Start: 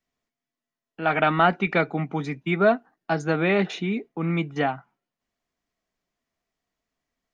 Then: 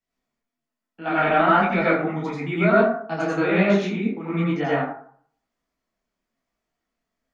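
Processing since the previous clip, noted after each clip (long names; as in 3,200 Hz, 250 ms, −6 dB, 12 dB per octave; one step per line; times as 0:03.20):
dense smooth reverb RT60 0.58 s, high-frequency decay 0.45×, pre-delay 75 ms, DRR −6.5 dB
micro pitch shift up and down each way 37 cents
level −1.5 dB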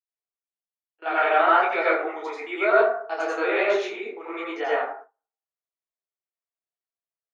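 noise gate with hold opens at −28 dBFS
elliptic high-pass filter 380 Hz, stop band 60 dB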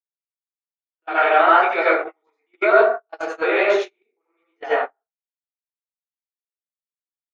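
noise gate −25 dBFS, range −42 dB
level +4.5 dB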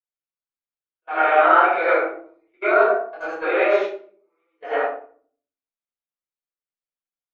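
bass and treble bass −4 dB, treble −9 dB
rectangular room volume 470 cubic metres, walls furnished, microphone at 5.3 metres
level −9.5 dB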